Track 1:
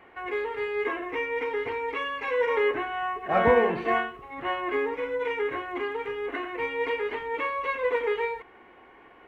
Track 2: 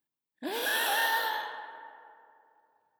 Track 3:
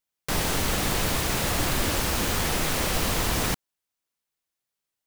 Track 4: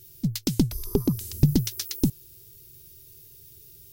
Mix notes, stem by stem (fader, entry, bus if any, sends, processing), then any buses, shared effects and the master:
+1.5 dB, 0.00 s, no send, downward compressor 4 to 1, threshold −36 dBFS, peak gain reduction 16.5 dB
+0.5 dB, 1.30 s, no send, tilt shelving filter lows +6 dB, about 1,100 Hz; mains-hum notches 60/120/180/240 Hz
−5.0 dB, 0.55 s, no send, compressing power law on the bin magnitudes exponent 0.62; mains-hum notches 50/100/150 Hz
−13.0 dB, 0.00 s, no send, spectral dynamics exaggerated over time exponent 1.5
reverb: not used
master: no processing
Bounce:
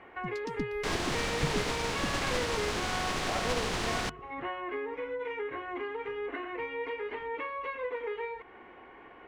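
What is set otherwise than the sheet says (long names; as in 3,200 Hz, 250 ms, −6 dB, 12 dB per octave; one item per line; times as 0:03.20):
stem 2: muted
master: extra high-frequency loss of the air 97 metres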